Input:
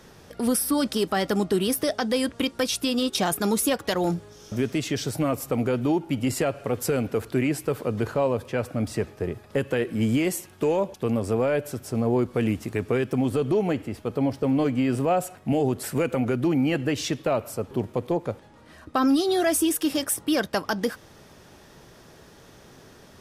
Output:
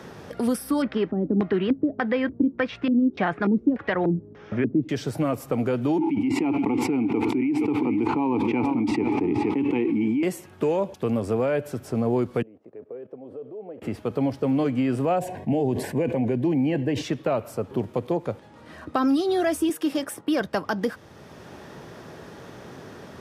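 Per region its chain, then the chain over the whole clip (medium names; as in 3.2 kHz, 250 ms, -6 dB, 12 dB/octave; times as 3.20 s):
0.82–4.89 s: low-pass 7.7 kHz 24 dB/octave + LFO low-pass square 1.7 Hz 290–2000 Hz
5.98–10.23 s: vowel filter u + delay 471 ms -15 dB + level flattener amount 100%
12.42–13.82 s: level held to a coarse grid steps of 19 dB + band-pass filter 510 Hz, Q 2.7
15.19–17.02 s: Butterworth band-stop 1.3 kHz, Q 2.7 + treble shelf 2.3 kHz -9 dB + decay stretcher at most 57 dB/s
19.69–20.41 s: high-pass 170 Hz + gate -41 dBFS, range -7 dB
whole clip: high-pass 79 Hz; treble shelf 3.8 kHz -9.5 dB; three bands compressed up and down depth 40%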